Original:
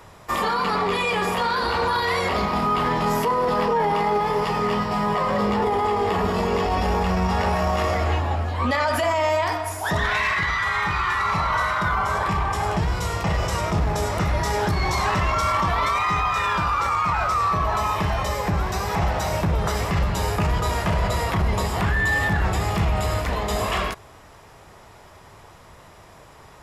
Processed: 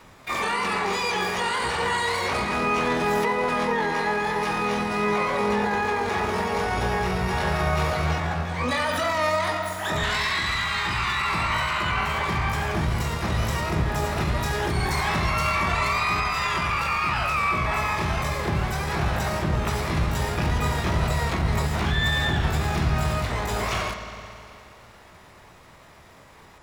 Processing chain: LPF 11000 Hz 24 dB/oct; notches 50/100/150/200 Hz; vibrato 4.4 Hz 7.8 cents; spring tank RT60 2.7 s, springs 53 ms, chirp 35 ms, DRR 7 dB; harmoniser +12 st -3 dB; gain -5 dB

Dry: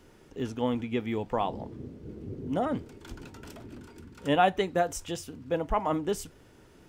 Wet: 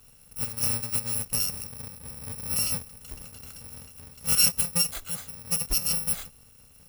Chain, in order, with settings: FFT order left unsorted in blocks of 128 samples; gain +1.5 dB

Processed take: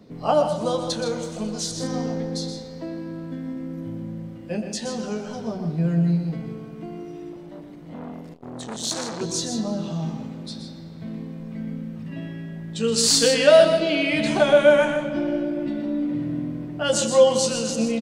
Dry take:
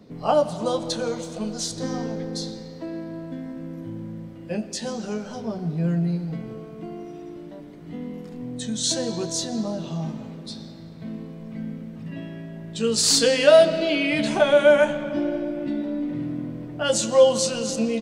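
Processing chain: loudspeakers at several distances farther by 42 m -9 dB, 54 m -11 dB; 7.32–9.21 core saturation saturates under 2400 Hz

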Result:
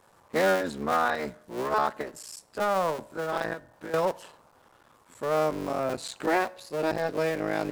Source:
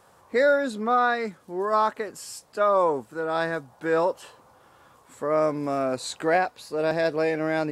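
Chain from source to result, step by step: cycle switcher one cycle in 3, muted; 3.53–3.94 compressor 4:1, threshold -36 dBFS, peak gain reduction 13.5 dB; on a send: reverb RT60 0.70 s, pre-delay 3 ms, DRR 18 dB; on the sum: gain -2 dB

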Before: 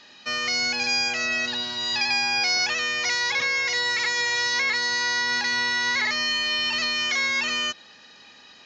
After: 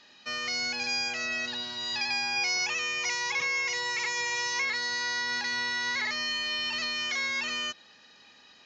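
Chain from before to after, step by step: 2.36–4.65 ripple EQ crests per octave 0.75, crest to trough 8 dB; gain -6.5 dB

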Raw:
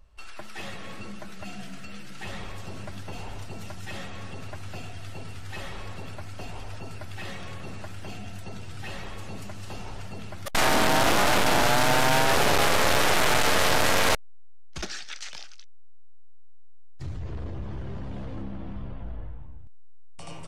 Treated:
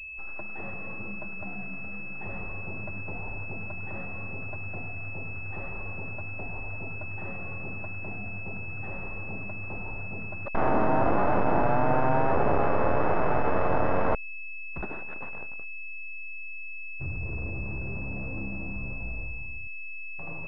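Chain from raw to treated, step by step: pulse-width modulation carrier 2600 Hz

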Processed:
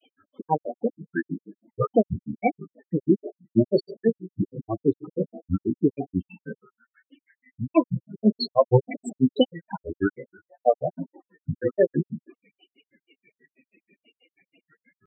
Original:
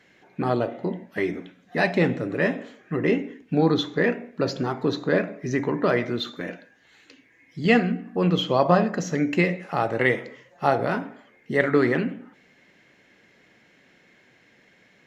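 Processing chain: loudest bins only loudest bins 8; grains, grains 6.2/s, spray 22 ms, pitch spread up and down by 7 st; gain +5.5 dB

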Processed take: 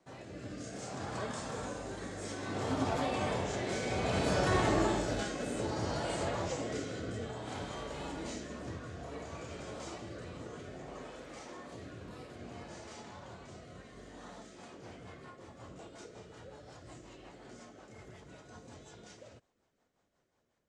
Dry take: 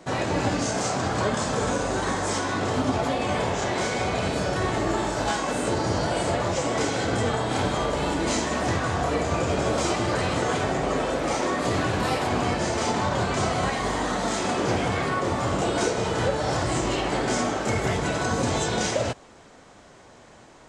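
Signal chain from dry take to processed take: Doppler pass-by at 4.4, 9 m/s, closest 9.2 m; AGC gain up to 3 dB; rotary speaker horn 0.6 Hz, later 5.5 Hz, at 14.05; gain -6 dB

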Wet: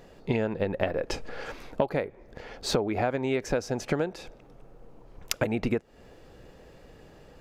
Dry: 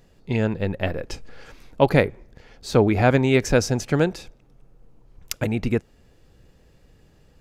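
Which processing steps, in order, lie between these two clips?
EQ curve 110 Hz 0 dB, 600 Hz +11 dB, 8700 Hz +1 dB; compressor 20:1, threshold -23 dBFS, peak gain reduction 22.5 dB

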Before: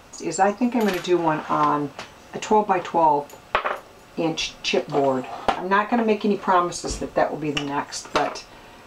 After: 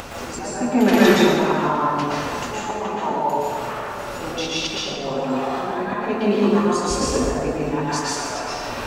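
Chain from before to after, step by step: auto swell 0.745 s; upward compressor, threshold -33 dBFS; plate-style reverb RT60 2.1 s, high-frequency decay 0.6×, pre-delay 0.105 s, DRR -7.5 dB; gain +5.5 dB

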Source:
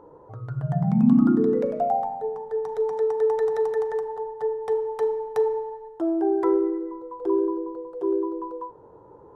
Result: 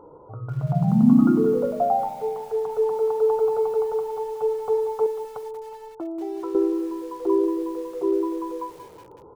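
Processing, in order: 5.06–6.55 compressor 2.5:1, threshold -36 dBFS, peak gain reduction 12.5 dB; brick-wall FIR low-pass 1500 Hz; feedback echo 0.365 s, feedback 24%, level -22 dB; lo-fi delay 0.185 s, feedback 55%, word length 7-bit, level -13 dB; gain +2 dB

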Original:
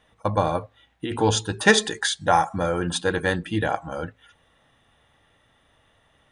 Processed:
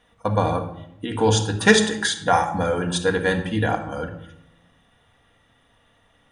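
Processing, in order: shoebox room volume 2200 m³, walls furnished, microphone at 1.8 m

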